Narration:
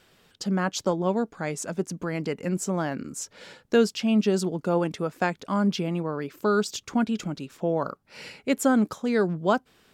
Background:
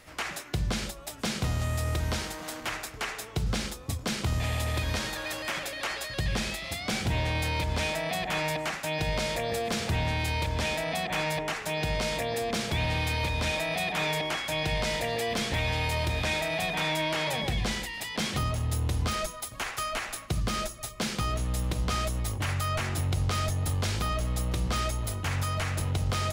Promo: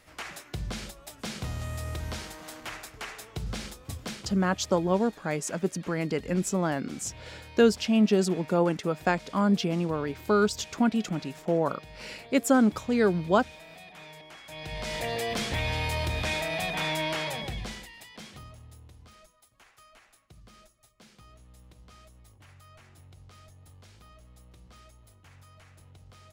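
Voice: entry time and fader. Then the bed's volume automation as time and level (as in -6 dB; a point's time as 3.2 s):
3.85 s, 0.0 dB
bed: 4.08 s -5.5 dB
4.39 s -18.5 dB
14.27 s -18.5 dB
15.06 s -1 dB
17.12 s -1 dB
18.98 s -24.5 dB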